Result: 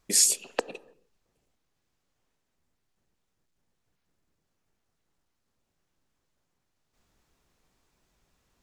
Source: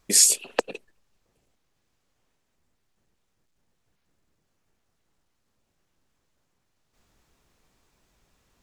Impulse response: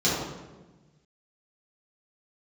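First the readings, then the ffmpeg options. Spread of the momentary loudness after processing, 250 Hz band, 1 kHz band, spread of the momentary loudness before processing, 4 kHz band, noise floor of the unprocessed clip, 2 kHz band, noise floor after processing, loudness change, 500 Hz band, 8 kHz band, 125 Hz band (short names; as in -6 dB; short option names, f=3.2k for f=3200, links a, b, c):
14 LU, -4.5 dB, -4.0 dB, 14 LU, -4.0 dB, -75 dBFS, -4.5 dB, -79 dBFS, -4.5 dB, -4.5 dB, -4.5 dB, -4.5 dB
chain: -filter_complex "[0:a]asplit=2[a][b];[1:a]atrim=start_sample=2205,afade=t=out:st=0.39:d=0.01,atrim=end_sample=17640[c];[b][c]afir=irnorm=-1:irlink=0,volume=-34.5dB[d];[a][d]amix=inputs=2:normalize=0,volume=-4.5dB"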